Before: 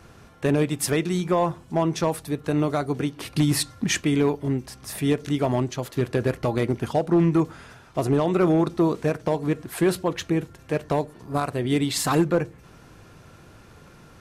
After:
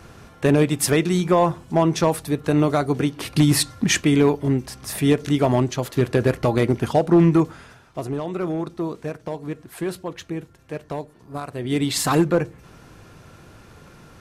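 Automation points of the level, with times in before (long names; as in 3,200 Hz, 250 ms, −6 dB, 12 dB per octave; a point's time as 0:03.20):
0:07.30 +4.5 dB
0:08.12 −6 dB
0:11.45 −6 dB
0:11.87 +2.5 dB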